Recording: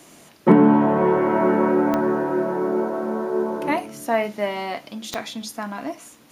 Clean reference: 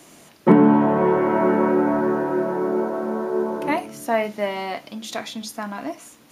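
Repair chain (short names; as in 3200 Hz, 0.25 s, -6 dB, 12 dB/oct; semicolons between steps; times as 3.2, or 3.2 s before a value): de-click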